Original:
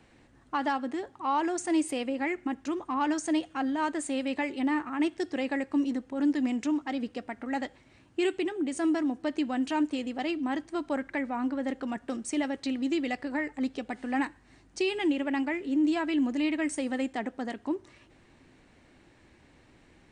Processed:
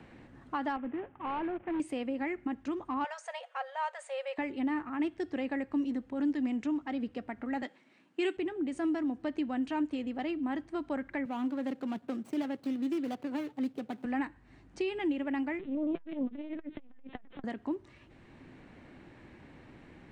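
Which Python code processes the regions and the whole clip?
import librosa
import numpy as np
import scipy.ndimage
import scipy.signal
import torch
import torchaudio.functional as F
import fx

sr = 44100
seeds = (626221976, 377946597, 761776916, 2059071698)

y = fx.chain(x, sr, fx.cvsd(bps=16000),
    fx.clip_hard(threshold_db=-27.0),
    fx.air_absorb(metres=330.0), at=(0.76, 1.8))
y = fx.chain(y, sr, fx.brickwall_highpass(low_hz=450.0),
    fx.comb(ms=5.4, depth=0.34), at=(3.04, 4.38))
y = fx.chain(y, sr, fx.steep_highpass(hz=180.0, slope=36),
    fx.high_shelf(hz=2000.0, db=9.0),
    fx.band_widen(depth_pct=40), at=(7.62, 8.37))
y = fx.chain(y, sr, fx.median_filter(points=25),
    fx.highpass(hz=120.0, slope=24),
    fx.high_shelf(hz=4000.0, db=10.0), at=(11.25, 14.05))
y = fx.chain(y, sr, fx.crossing_spikes(level_db=-31.0),
    fx.lpc_vocoder(seeds[0], excitation='pitch_kept', order=16),
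    fx.transformer_sat(knee_hz=340.0), at=(15.59, 17.44))
y = fx.bass_treble(y, sr, bass_db=5, treble_db=-11)
y = fx.band_squash(y, sr, depth_pct=40)
y = F.gain(torch.from_numpy(y), -5.0).numpy()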